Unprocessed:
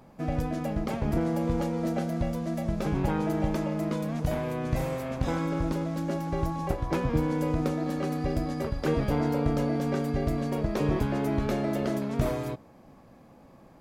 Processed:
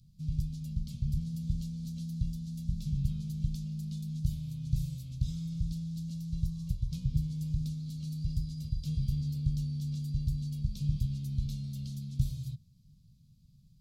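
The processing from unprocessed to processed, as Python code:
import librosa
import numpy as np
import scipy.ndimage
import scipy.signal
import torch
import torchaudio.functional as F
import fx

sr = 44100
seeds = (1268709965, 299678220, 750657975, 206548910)

y = scipy.signal.sosfilt(scipy.signal.ellip(3, 1.0, 40, [150.0, 4000.0], 'bandstop', fs=sr, output='sos'), x)
y = fx.high_shelf(y, sr, hz=5000.0, db=-7.5)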